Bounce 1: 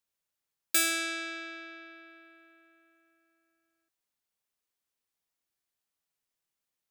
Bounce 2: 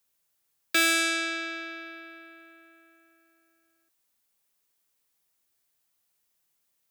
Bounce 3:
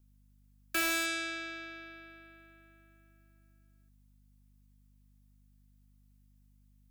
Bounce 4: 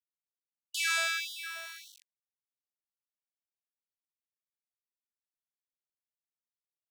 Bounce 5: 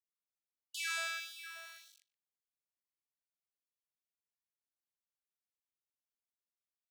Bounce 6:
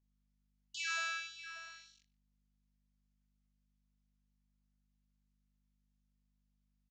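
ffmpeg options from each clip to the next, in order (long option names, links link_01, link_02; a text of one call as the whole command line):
ffmpeg -i in.wav -filter_complex "[0:a]acrossover=split=4400[link_01][link_02];[link_02]acompressor=threshold=-39dB:ratio=4:attack=1:release=60[link_03];[link_01][link_03]amix=inputs=2:normalize=0,highshelf=frequency=8300:gain=7.5,acrossover=split=190|560|6800[link_04][link_05][link_06][link_07];[link_07]alimiter=level_in=7dB:limit=-24dB:level=0:latency=1,volume=-7dB[link_08];[link_04][link_05][link_06][link_08]amix=inputs=4:normalize=0,volume=7dB" out.wav
ffmpeg -i in.wav -filter_complex "[0:a]aeval=exprs='val(0)+0.00158*(sin(2*PI*50*n/s)+sin(2*PI*2*50*n/s)/2+sin(2*PI*3*50*n/s)/3+sin(2*PI*4*50*n/s)/4+sin(2*PI*5*50*n/s)/5)':channel_layout=same,acrossover=split=620|2700[link_01][link_02][link_03];[link_03]aeval=exprs='(mod(14.1*val(0)+1,2)-1)/14.1':channel_layout=same[link_04];[link_01][link_02][link_04]amix=inputs=3:normalize=0,volume=-7dB" out.wav
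ffmpeg -i in.wav -af "lowpass=8400,aeval=exprs='val(0)*gte(abs(val(0)),0.00668)':channel_layout=same,afftfilt=real='re*gte(b*sr/1024,590*pow(2900/590,0.5+0.5*sin(2*PI*1.7*pts/sr)))':imag='im*gte(b*sr/1024,590*pow(2900/590,0.5+0.5*sin(2*PI*1.7*pts/sr)))':win_size=1024:overlap=0.75,volume=3.5dB" out.wav
ffmpeg -i in.wav -filter_complex "[0:a]asplit=2[link_01][link_02];[link_02]adelay=122,lowpass=frequency=1000:poles=1,volume=-10.5dB,asplit=2[link_03][link_04];[link_04]adelay=122,lowpass=frequency=1000:poles=1,volume=0.22,asplit=2[link_05][link_06];[link_06]adelay=122,lowpass=frequency=1000:poles=1,volume=0.22[link_07];[link_01][link_03][link_05][link_07]amix=inputs=4:normalize=0,volume=-8dB" out.wav
ffmpeg -i in.wav -filter_complex "[0:a]aeval=exprs='val(0)+0.000141*(sin(2*PI*50*n/s)+sin(2*PI*2*50*n/s)/2+sin(2*PI*3*50*n/s)/3+sin(2*PI*4*50*n/s)/4+sin(2*PI*5*50*n/s)/5)':channel_layout=same,asplit=2[link_01][link_02];[link_02]adelay=25,volume=-5dB[link_03];[link_01][link_03]amix=inputs=2:normalize=0,aresample=16000,aresample=44100,volume=-1.5dB" out.wav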